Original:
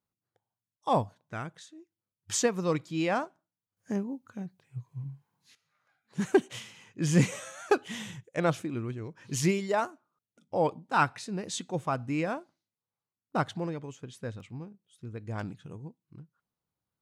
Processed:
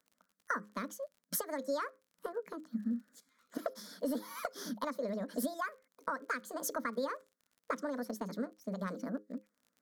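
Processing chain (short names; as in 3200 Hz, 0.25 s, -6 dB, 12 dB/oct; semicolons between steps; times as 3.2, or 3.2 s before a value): HPF 110 Hz 24 dB/oct; high shelf 4500 Hz -11 dB; notches 60/120/180/240/300 Hz; compressor 16:1, threshold -40 dBFS, peak gain reduction 24 dB; fixed phaser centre 310 Hz, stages 8; crackle 31/s -59 dBFS; speed mistake 45 rpm record played at 78 rpm; gain +10 dB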